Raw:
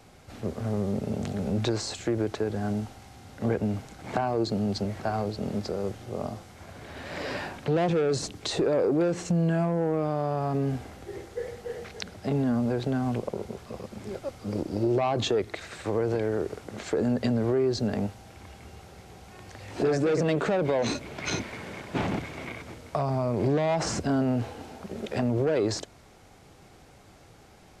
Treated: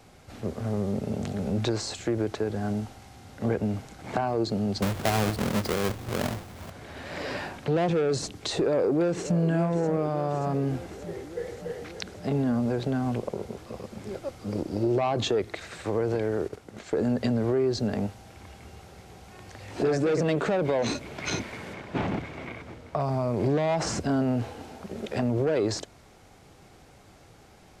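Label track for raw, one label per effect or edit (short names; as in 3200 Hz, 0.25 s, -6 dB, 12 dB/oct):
4.820000	6.700000	half-waves squared off
8.560000	9.390000	echo throw 0.58 s, feedback 75%, level -12 dB
16.480000	17.040000	gate -38 dBFS, range -7 dB
21.730000	22.990000	high shelf 6100 Hz -> 4400 Hz -11.5 dB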